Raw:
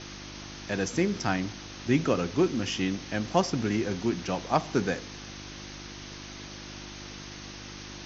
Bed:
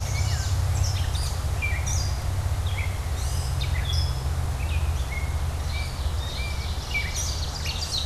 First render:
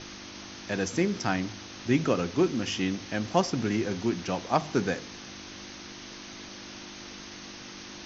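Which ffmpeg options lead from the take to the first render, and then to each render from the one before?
-af "bandreject=f=50:t=h:w=4,bandreject=f=100:t=h:w=4,bandreject=f=150:t=h:w=4"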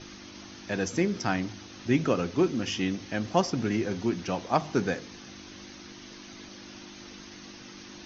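-af "afftdn=nr=6:nf=-44"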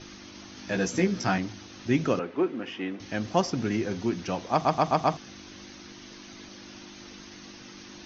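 -filter_complex "[0:a]asettb=1/sr,asplit=3[a][b][c];[a]atrim=end=0.554[d];[b]atrim=start=0.55:end=1.38,asetpts=PTS-STARTPTS,afade=t=in:d=0.004:c=qsin,afade=t=out:st=0.826:d=0.004:c=qsin,asplit=2[e][f];[f]adelay=16,volume=-2.5dB[g];[e][g]amix=inputs=2:normalize=0,atrim=end_sample=36603[h];[c]atrim=start=1.376[i];[d][h]acrossfade=d=0.004:c1=hsin:c2=qsin[j];[j][i]acrossfade=d=0.004:c1=qsin:c2=hsin,asettb=1/sr,asplit=3[k][l][m];[k]atrim=end=2.194[n];[l]atrim=start=2.19:end=3,asetpts=PTS-STARTPTS,afade=t=in:d=0.004:c=qsin,afade=t=out:st=0.806:d=0.004:c=qsin,acrossover=split=240 2800:gain=0.112 1 0.0631[o][p][q];[o][p][q]amix=inputs=3:normalize=0[r];[m]atrim=start=2.996[s];[n][r]acrossfade=d=0.004:c1=hsin:c2=qsin[t];[t][s]acrossfade=d=0.004:c1=qsin:c2=hsin,asplit=6[u][v][w][x][y][z];[u]atrim=end=4.652[aa];[v]atrim=start=4.518:end=4.652[ab];[w]atrim=start=4.518:end=4.652[ac];[x]atrim=start=4.518:end=4.652[ad];[y]atrim=start=4.518:end=4.652[ae];[z]atrim=start=5.168[af];[aa][ab]acrossfade=d=0.004:c1=hsin:c2=hsin[ag];[ag][ac]acrossfade=d=0.004:c1=hsin:c2=hsin[ah];[ah][ad]acrossfade=d=0.004:c1=hsin:c2=hsin[ai];[ai][ae]acrossfade=d=0.004:c1=hsin:c2=hsin[aj];[aj][af]acrossfade=d=0.004:c1=hsin:c2=hsin"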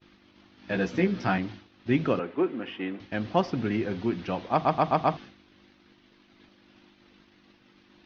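-af "lowpass=f=3.9k:w=0.5412,lowpass=f=3.9k:w=1.3066,agate=range=-33dB:threshold=-37dB:ratio=3:detection=peak"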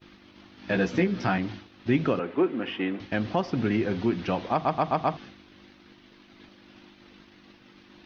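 -filter_complex "[0:a]asplit=2[a][b];[b]acompressor=threshold=-32dB:ratio=6,volume=-1dB[c];[a][c]amix=inputs=2:normalize=0,alimiter=limit=-12dB:level=0:latency=1:release=218"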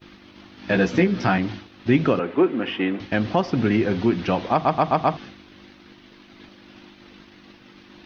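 -af "volume=5.5dB"

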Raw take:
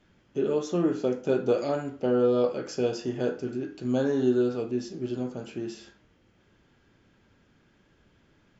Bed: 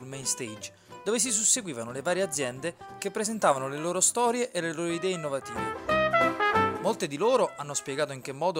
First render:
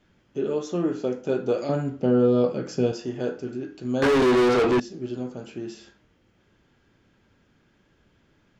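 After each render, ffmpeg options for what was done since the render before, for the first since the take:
-filter_complex "[0:a]asettb=1/sr,asplit=3[a][b][c];[a]atrim=end=1.694[d];[b]atrim=start=1.69:end=2.92,asetpts=PTS-STARTPTS,afade=t=in:d=0.004:c=qsin,afade=t=out:st=1.226:d=0.004:c=qsin,equalizer=f=160:w=0.89:g=11.5[e];[c]atrim=start=2.916[f];[d][e]acrossfade=d=0.004:c1=hsin:c2=qsin[g];[g][f]acrossfade=d=0.004:c1=qsin:c2=hsin,asettb=1/sr,asplit=3[h][i][j];[h]atrim=end=4.024[k];[i]atrim=start=4.02:end=4.8,asetpts=PTS-STARTPTS,afade=t=in:d=0.004:c=qsin,afade=t=out:st=0.776:d=0.004:c=qsin,asplit=2[l][m];[m]highpass=f=720:p=1,volume=35dB,asoftclip=type=tanh:threshold=-12.5dB[n];[l][n]amix=inputs=2:normalize=0,lowpass=f=3.7k:p=1,volume=-6dB[o];[j]atrim=start=4.796[p];[k][o]acrossfade=d=0.004:c1=hsin:c2=qsin[q];[q][p]acrossfade=d=0.004:c1=qsin:c2=hsin"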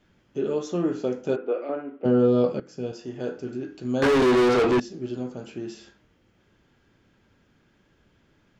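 -filter_complex "[0:a]asplit=3[a][b][c];[a]afade=t=out:st=1.35:d=0.02[d];[b]highpass=f=320:w=0.5412,highpass=f=320:w=1.3066,equalizer=f=380:t=q:w=4:g=-3,equalizer=f=620:t=q:w=4:g=-3,equalizer=f=890:t=q:w=4:g=-6,equalizer=f=1.7k:t=q:w=4:g=-5,lowpass=f=2.4k:w=0.5412,lowpass=f=2.4k:w=1.3066,afade=t=in:st=1.35:d=0.02,afade=t=out:st=2.04:d=0.02[e];[c]afade=t=in:st=2.04:d=0.02[f];[d][e][f]amix=inputs=3:normalize=0,asplit=2[g][h];[g]atrim=end=2.6,asetpts=PTS-STARTPTS,afade=t=out:st=2.596:d=0.004:c=hsin:silence=0.158489[i];[h]atrim=start=2.6,asetpts=PTS-STARTPTS,afade=t=in:d=0.96:silence=0.158489[j];[i][j]concat=n=2:v=0:a=1"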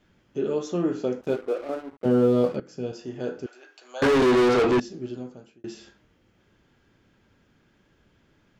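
-filter_complex "[0:a]asettb=1/sr,asplit=3[a][b][c];[a]atrim=end=1.214[d];[b]atrim=start=1.21:end=2.56,asetpts=PTS-STARTPTS,afade=t=in:d=0.004:c=qsin,afade=t=out:st=1.346:d=0.004:c=qsin,aeval=exprs='sgn(val(0))*max(abs(val(0))-0.00668,0)':c=same[e];[c]atrim=start=2.556[f];[d][e]acrossfade=d=0.004:c1=hsin:c2=qsin[g];[g][f]acrossfade=d=0.004:c1=qsin:c2=hsin,asettb=1/sr,asplit=3[h][i][j];[h]atrim=end=3.464[k];[i]atrim=start=3.46:end=4.02,asetpts=PTS-STARTPTS,afade=t=in:d=0.004:c=qsin,afade=t=out:st=0.556:d=0.004:c=qsin,highpass=f=660:w=0.5412,highpass=f=660:w=1.3066[l];[j]atrim=start=4.016[m];[k][l]acrossfade=d=0.004:c1=hsin:c2=qsin[n];[n][m]acrossfade=d=0.004:c1=qsin:c2=hsin,asplit=2[o][p];[o]atrim=end=5.64,asetpts=PTS-STARTPTS,afade=t=out:st=4.92:d=0.72[q];[p]atrim=start=5.64,asetpts=PTS-STARTPTS,afade=t=in:d=0.004:c=hsin[r];[q][r]concat=n=2:v=0:a=1"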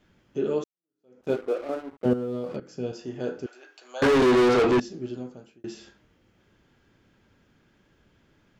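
-filter_complex "[0:a]asettb=1/sr,asplit=3[a][b][c];[a]atrim=end=2.134[d];[b]atrim=start=2.13:end=2.71,asetpts=PTS-STARTPTS,afade=t=in:d=0.004:c=qsin,afade=t=out:st=0.576:d=0.004:c=qsin,acompressor=threshold=-27dB:ratio=8:attack=3.2:release=140:knee=1:detection=peak[e];[c]atrim=start=2.706[f];[d][e]acrossfade=d=0.004:c1=hsin:c2=qsin[g];[g][f]acrossfade=d=0.004:c1=qsin:c2=hsin,asplit=2[h][i];[h]atrim=end=0.64,asetpts=PTS-STARTPTS,afade=t=out:st=0.636:d=0.004:c=hsin[j];[i]atrim=start=0.64,asetpts=PTS-STARTPTS,afade=t=in:d=0.66:c=exp[k];[j][k]concat=n=2:v=0:a=1"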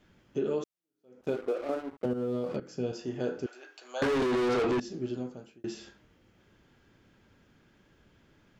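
-af "alimiter=limit=-17.5dB:level=0:latency=1,acompressor=threshold=-26dB:ratio=6"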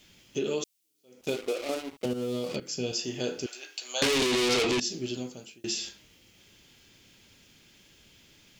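-af "aexciter=amount=5.6:drive=5:freq=2.2k"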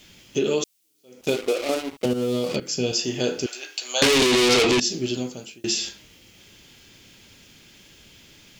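-af "volume=7.5dB"

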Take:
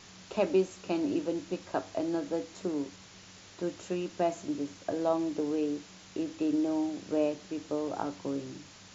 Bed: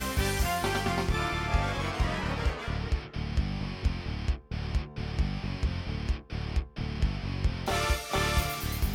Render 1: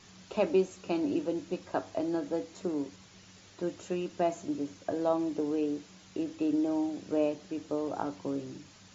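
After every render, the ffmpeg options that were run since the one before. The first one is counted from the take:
-af "afftdn=nr=6:nf=-53"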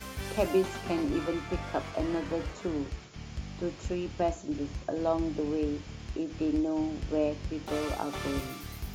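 -filter_complex "[1:a]volume=-9.5dB[a];[0:a][a]amix=inputs=2:normalize=0"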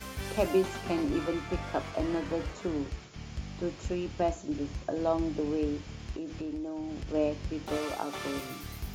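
-filter_complex "[0:a]asplit=3[a][b][c];[a]afade=t=out:st=6.12:d=0.02[d];[b]acompressor=threshold=-33dB:ratio=6:attack=3.2:release=140:knee=1:detection=peak,afade=t=in:st=6.12:d=0.02,afade=t=out:st=7.13:d=0.02[e];[c]afade=t=in:st=7.13:d=0.02[f];[d][e][f]amix=inputs=3:normalize=0,asettb=1/sr,asplit=3[g][h][i];[g]atrim=end=7.774[j];[h]atrim=start=7.77:end=8.5,asetpts=PTS-STARTPTS,afade=t=in:d=0.004:c=qsin,afade=t=out:st=0.726:d=0.004:c=qsin,highpass=f=260:p=1[k];[i]atrim=start=8.496[l];[j][k]acrossfade=d=0.004:c1=hsin:c2=qsin[m];[m][l]acrossfade=d=0.004:c1=qsin:c2=hsin"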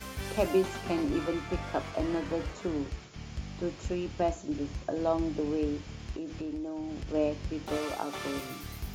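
-af anull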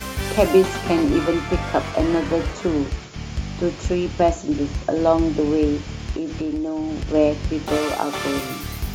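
-af "volume=11.5dB,alimiter=limit=-3dB:level=0:latency=1"

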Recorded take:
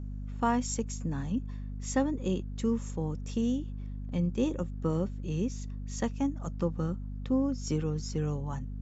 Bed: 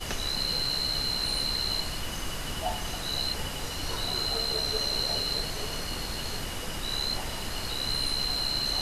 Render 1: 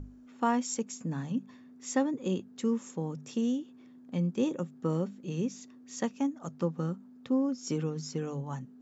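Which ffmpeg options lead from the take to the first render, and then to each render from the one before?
-af "bandreject=f=50:t=h:w=6,bandreject=f=100:t=h:w=6,bandreject=f=150:t=h:w=6,bandreject=f=200:t=h:w=6"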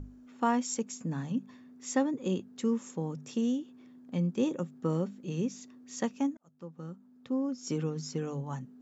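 -filter_complex "[0:a]asplit=2[a][b];[a]atrim=end=6.37,asetpts=PTS-STARTPTS,afade=t=out:st=6.366:d=0.004:c=hsin[c];[b]atrim=start=6.37,asetpts=PTS-STARTPTS,afade=t=in:d=1.49[d];[c][d]concat=n=2:v=0:a=1"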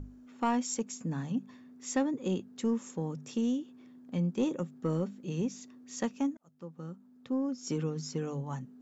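-af "asoftclip=type=tanh:threshold=-19dB"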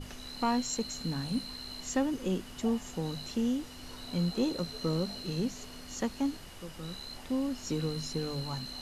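-filter_complex "[1:a]volume=-14dB[a];[0:a][a]amix=inputs=2:normalize=0"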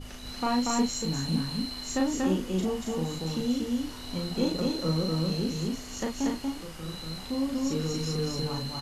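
-filter_complex "[0:a]asplit=2[a][b];[b]adelay=37,volume=-2.5dB[c];[a][c]amix=inputs=2:normalize=0,aecho=1:1:236.2|274.1:0.794|0.251"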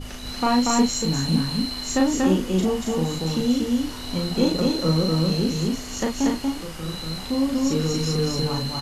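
-af "volume=7dB"

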